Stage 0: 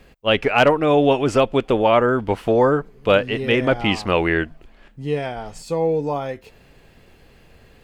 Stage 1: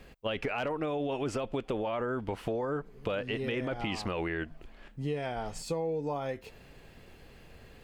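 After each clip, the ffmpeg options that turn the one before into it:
-af "alimiter=limit=0.224:level=0:latency=1:release=13,acompressor=threshold=0.0447:ratio=6,volume=0.708"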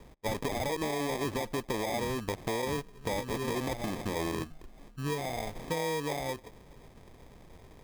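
-af "acrusher=samples=31:mix=1:aa=0.000001"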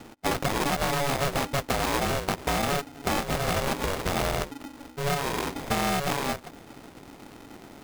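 -af "aeval=exprs='val(0)*sgn(sin(2*PI*280*n/s))':c=same,volume=2"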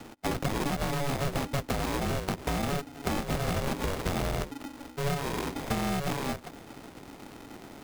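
-filter_complex "[0:a]acrossover=split=370[s0][s1];[s1]acompressor=threshold=0.0251:ratio=3[s2];[s0][s2]amix=inputs=2:normalize=0"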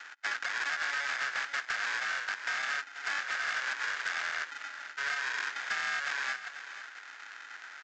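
-af "highpass=f=1600:t=q:w=5.6,aresample=16000,asoftclip=type=tanh:threshold=0.0531,aresample=44100,aecho=1:1:489:0.224"

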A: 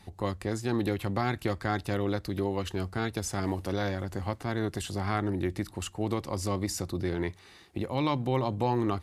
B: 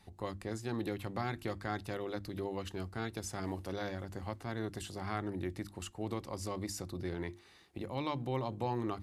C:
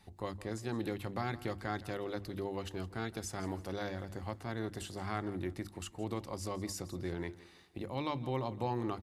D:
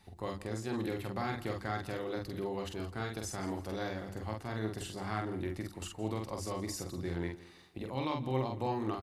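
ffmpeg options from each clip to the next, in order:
-af "bandreject=f=50:t=h:w=6,bandreject=f=100:t=h:w=6,bandreject=f=150:t=h:w=6,bandreject=f=200:t=h:w=6,bandreject=f=250:t=h:w=6,bandreject=f=300:t=h:w=6,bandreject=f=350:t=h:w=6,volume=0.422"
-af "aecho=1:1:166|332|498:0.133|0.044|0.0145"
-filter_complex "[0:a]asplit=2[s0][s1];[s1]adelay=46,volume=0.668[s2];[s0][s2]amix=inputs=2:normalize=0"

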